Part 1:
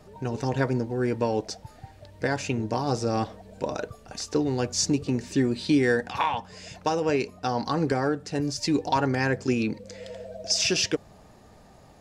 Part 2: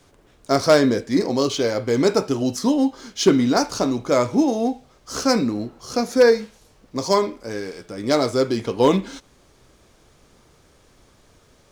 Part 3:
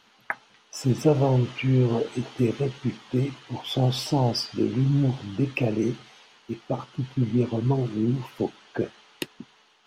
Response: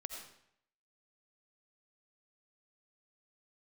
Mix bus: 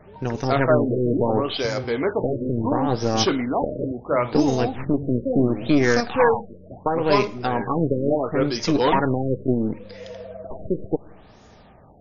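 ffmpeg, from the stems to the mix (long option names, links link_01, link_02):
-filter_complex "[0:a]aeval=exprs='0.282*(cos(1*acos(clip(val(0)/0.282,-1,1)))-cos(1*PI/2))+0.0398*(cos(4*acos(clip(val(0)/0.282,-1,1)))-cos(4*PI/2))':channel_layout=same,volume=2dB,asplit=2[link_01][link_02];[link_02]volume=-17dB[link_03];[1:a]asoftclip=type=hard:threshold=-9.5dB,lowshelf=frequency=500:gain=-11.5,volume=1.5dB,asplit=2[link_04][link_05];[link_05]volume=-22.5dB[link_06];[2:a]volume=-13.5dB,asplit=2[link_07][link_08];[link_08]volume=-22dB[link_09];[3:a]atrim=start_sample=2205[link_10];[link_03][link_06][link_09]amix=inputs=3:normalize=0[link_11];[link_11][link_10]afir=irnorm=-1:irlink=0[link_12];[link_01][link_04][link_07][link_12]amix=inputs=4:normalize=0,bandreject=frequency=4400:width=16,afftfilt=real='re*lt(b*sr/1024,600*pow(7000/600,0.5+0.5*sin(2*PI*0.72*pts/sr)))':imag='im*lt(b*sr/1024,600*pow(7000/600,0.5+0.5*sin(2*PI*0.72*pts/sr)))':win_size=1024:overlap=0.75"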